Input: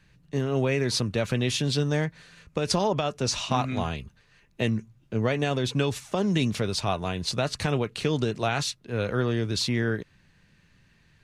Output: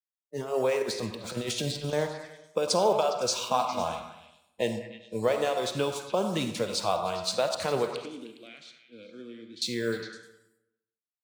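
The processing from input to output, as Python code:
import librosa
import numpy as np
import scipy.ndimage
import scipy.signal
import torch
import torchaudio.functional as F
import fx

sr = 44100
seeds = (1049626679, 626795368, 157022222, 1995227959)

y = fx.delta_hold(x, sr, step_db=-37.0)
y = scipy.signal.sosfilt(scipy.signal.butter(2, 110.0, 'highpass', fs=sr, output='sos'), y)
y = fx.noise_reduce_blind(y, sr, reduce_db=24)
y = fx.graphic_eq(y, sr, hz=(500, 1000, 4000, 8000), db=(11, 7, 5, 9))
y = fx.over_compress(y, sr, threshold_db=-25.0, ratio=-0.5, at=(0.82, 1.93))
y = fx.vowel_filter(y, sr, vowel='i', at=(7.96, 9.62))
y = fx.echo_stepped(y, sr, ms=102, hz=1000.0, octaves=0.7, feedback_pct=70, wet_db=-6)
y = fx.rev_freeverb(y, sr, rt60_s=0.93, hf_ratio=0.6, predelay_ms=10, drr_db=8.0)
y = F.gain(torch.from_numpy(y), -8.5).numpy()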